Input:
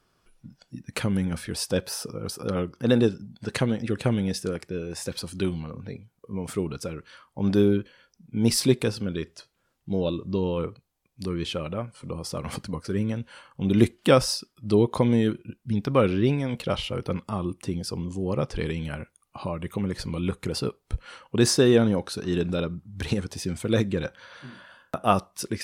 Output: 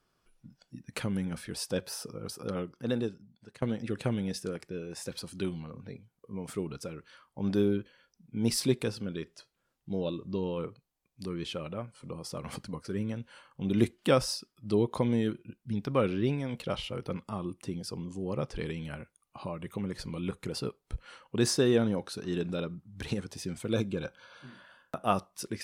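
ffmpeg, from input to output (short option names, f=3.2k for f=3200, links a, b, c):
-filter_complex "[0:a]asettb=1/sr,asplit=3[a][b][c];[a]atrim=end=23.734[d];[b]atrim=start=23.73:end=24.47,asetpts=PTS-STARTPTS,afade=t=in:d=0.004:c=qsin,afade=t=out:st=0.736:d=0.004:c=qsin,asuperstop=centerf=1900:order=12:qfactor=5.5[e];[c]atrim=start=24.466[f];[d][e]acrossfade=d=0.004:c1=hsin:c2=qsin[g];[g][f]acrossfade=d=0.004:c1=qsin:c2=hsin,asplit=2[h][i];[h]atrim=end=3.62,asetpts=PTS-STARTPTS,afade=t=out:st=2.49:d=1.13:silence=0.0891251[j];[i]atrim=start=3.62,asetpts=PTS-STARTPTS,afade=t=in:d=0.004:c=hsin:silence=0.0891251[k];[j][k]concat=n=2:v=0:a=1,equalizer=f=85:t=o:w=0.28:g=-8,volume=-6.5dB"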